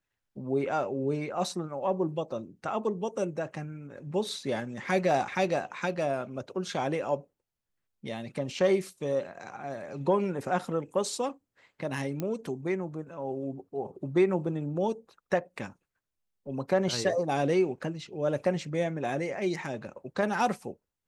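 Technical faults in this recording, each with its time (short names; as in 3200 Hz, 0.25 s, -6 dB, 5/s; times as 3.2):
12.2 pop -19 dBFS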